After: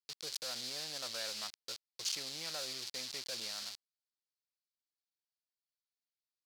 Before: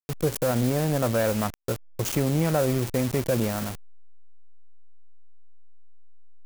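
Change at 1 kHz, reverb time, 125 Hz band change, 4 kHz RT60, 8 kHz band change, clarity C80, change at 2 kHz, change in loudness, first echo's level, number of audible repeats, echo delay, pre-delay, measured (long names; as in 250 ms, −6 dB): −19.5 dB, no reverb audible, −37.0 dB, no reverb audible, −7.0 dB, no reverb audible, −12.0 dB, −14.0 dB, no echo audible, no echo audible, no echo audible, no reverb audible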